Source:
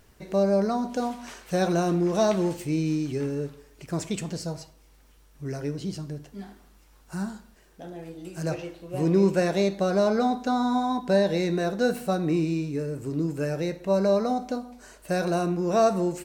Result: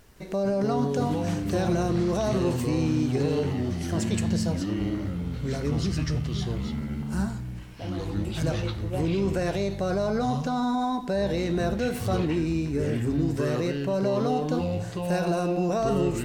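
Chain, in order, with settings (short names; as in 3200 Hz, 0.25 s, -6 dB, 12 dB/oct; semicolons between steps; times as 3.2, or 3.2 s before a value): limiter -21 dBFS, peak gain reduction 10 dB; echoes that change speed 0.161 s, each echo -6 st, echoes 3; gain +2 dB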